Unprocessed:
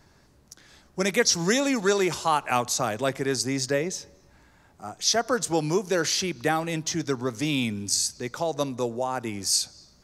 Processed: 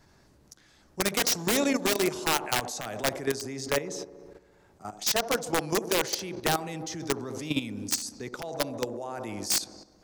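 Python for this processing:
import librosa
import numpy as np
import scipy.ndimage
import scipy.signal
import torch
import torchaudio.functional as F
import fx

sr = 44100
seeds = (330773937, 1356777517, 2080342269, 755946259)

y = (np.mod(10.0 ** (15.0 / 20.0) * x + 1.0, 2.0) - 1.0) / 10.0 ** (15.0 / 20.0)
y = fx.echo_wet_bandpass(y, sr, ms=68, feedback_pct=74, hz=420.0, wet_db=-8.0)
y = fx.level_steps(y, sr, step_db=12)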